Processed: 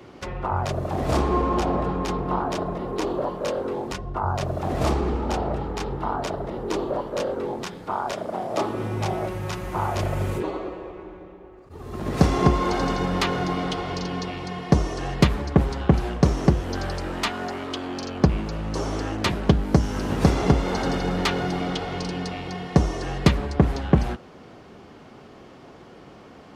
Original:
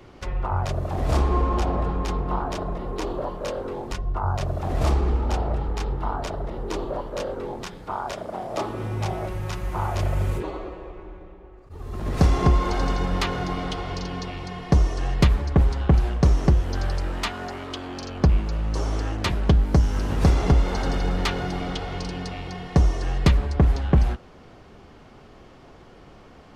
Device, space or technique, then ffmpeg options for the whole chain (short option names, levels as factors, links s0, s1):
filter by subtraction: -filter_complex "[0:a]asplit=2[s0][s1];[s1]lowpass=220,volume=-1[s2];[s0][s2]amix=inputs=2:normalize=0,volume=1.26"